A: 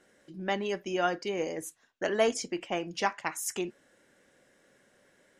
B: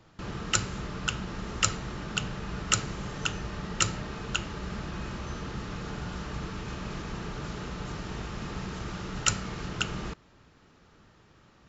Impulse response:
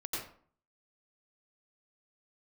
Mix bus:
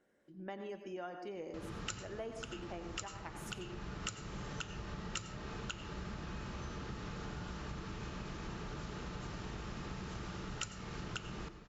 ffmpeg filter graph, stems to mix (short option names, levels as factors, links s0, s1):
-filter_complex "[0:a]highshelf=f=2100:g=-10.5,volume=0.282,asplit=3[s0][s1][s2];[s1]volume=0.398[s3];[1:a]adelay=1350,volume=0.708,asplit=2[s4][s5];[s5]volume=0.188[s6];[s2]apad=whole_len=574814[s7];[s4][s7]sidechaincompress=threshold=0.00355:ratio=8:attack=16:release=640[s8];[2:a]atrim=start_sample=2205[s9];[s3][s6]amix=inputs=2:normalize=0[s10];[s10][s9]afir=irnorm=-1:irlink=0[s11];[s0][s8][s11]amix=inputs=3:normalize=0,acompressor=threshold=0.00891:ratio=4"